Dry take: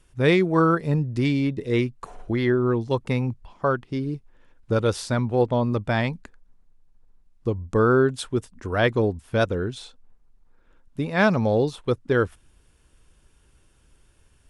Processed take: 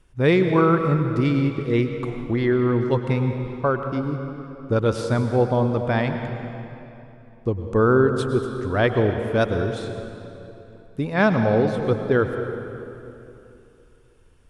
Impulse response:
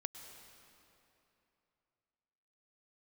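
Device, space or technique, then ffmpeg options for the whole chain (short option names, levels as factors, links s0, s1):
swimming-pool hall: -filter_complex "[1:a]atrim=start_sample=2205[s0];[0:a][s0]afir=irnorm=-1:irlink=0,highshelf=f=3400:g=-8,asettb=1/sr,asplit=3[s1][s2][s3];[s1]atrim=end=9.204[s4];[s2]atrim=start=9.2:end=11.14,asetpts=PTS-STARTPTS,afade=t=in:d=0.004:c=qsin,afade=t=out:st=1.936:d=0.004:c=qsin,highshelf=f=5800:g=5.5[s5];[s3]atrim=start=11.136[s6];[s4][s5]acrossfade=d=0.004:c1=hsin:c2=qsin[s7];[s7][s6]acrossfade=d=0.004:c1=qsin:c2=hsin,volume=1.68"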